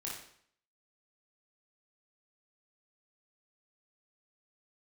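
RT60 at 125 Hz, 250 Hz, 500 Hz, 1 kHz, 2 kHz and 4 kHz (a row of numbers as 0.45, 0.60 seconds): 0.60, 0.60, 0.60, 0.60, 0.60, 0.55 seconds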